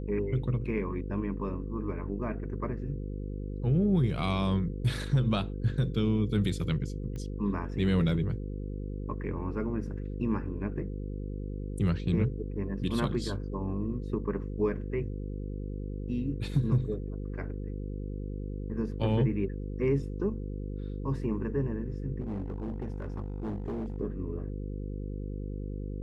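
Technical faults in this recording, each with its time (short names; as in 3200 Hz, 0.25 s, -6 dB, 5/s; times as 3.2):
buzz 50 Hz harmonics 10 -36 dBFS
7.16 pop -29 dBFS
22.2–23.96 clipped -31 dBFS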